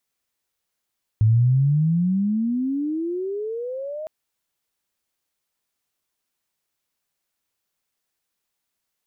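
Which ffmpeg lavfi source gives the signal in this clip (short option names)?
-f lavfi -i "aevalsrc='pow(10,(-12.5-16*t/2.86)/20)*sin(2*PI*106*2.86/(31*log(2)/12)*(exp(31*log(2)/12*t/2.86)-1))':d=2.86:s=44100"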